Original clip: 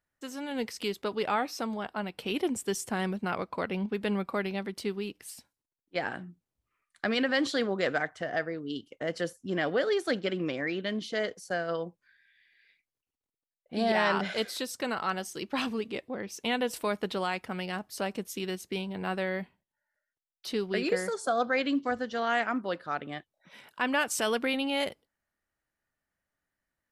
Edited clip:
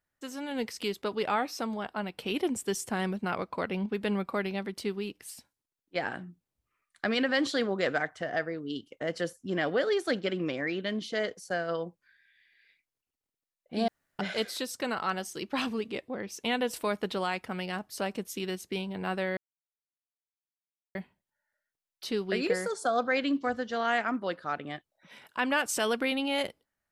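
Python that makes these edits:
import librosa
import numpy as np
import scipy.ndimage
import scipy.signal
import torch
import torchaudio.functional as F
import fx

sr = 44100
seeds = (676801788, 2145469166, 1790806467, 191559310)

y = fx.edit(x, sr, fx.room_tone_fill(start_s=13.88, length_s=0.31),
    fx.insert_silence(at_s=19.37, length_s=1.58), tone=tone)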